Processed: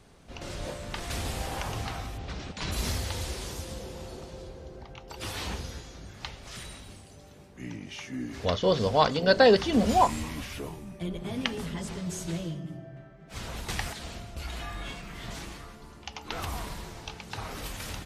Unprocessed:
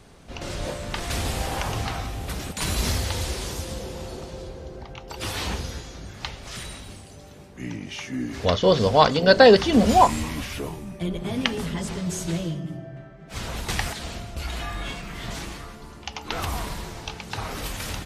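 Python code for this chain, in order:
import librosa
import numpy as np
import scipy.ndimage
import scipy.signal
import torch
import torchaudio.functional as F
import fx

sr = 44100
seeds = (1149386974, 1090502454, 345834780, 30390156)

y = fx.lowpass(x, sr, hz=5800.0, slope=24, at=(2.17, 2.71), fade=0.02)
y = F.gain(torch.from_numpy(y), -6.0).numpy()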